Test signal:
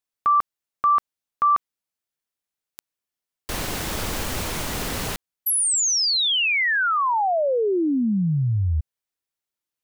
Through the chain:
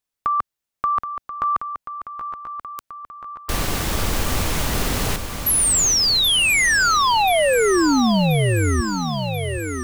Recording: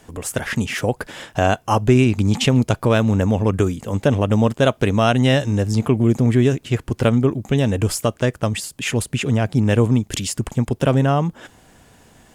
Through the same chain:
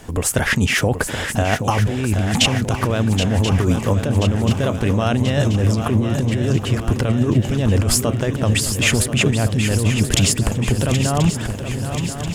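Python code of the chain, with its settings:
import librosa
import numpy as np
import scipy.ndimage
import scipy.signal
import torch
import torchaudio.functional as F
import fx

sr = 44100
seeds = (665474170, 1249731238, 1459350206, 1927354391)

y = fx.low_shelf(x, sr, hz=110.0, db=6.5)
y = fx.over_compress(y, sr, threshold_db=-20.0, ratio=-1.0)
y = fx.echo_swing(y, sr, ms=1033, ratio=3, feedback_pct=58, wet_db=-9.0)
y = y * librosa.db_to_amplitude(2.5)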